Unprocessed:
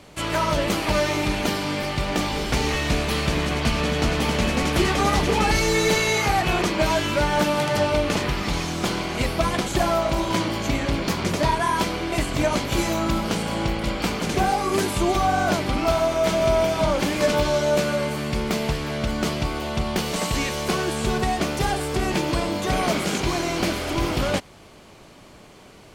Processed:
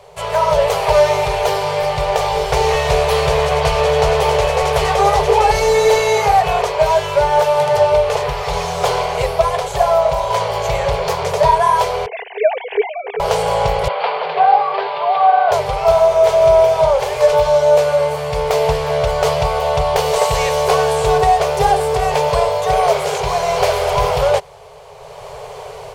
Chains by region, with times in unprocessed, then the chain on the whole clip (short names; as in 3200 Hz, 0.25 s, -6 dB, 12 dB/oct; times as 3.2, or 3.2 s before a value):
12.06–13.2 sine-wave speech + bell 940 Hz -14 dB 0.98 oct + fixed phaser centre 850 Hz, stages 8
13.88–15.52 Chebyshev band-pass 150–4700 Hz, order 5 + three-band isolator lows -13 dB, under 550 Hz, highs -16 dB, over 3700 Hz
whole clip: FFT band-reject 170–390 Hz; band shelf 620 Hz +10 dB; AGC; gain -1 dB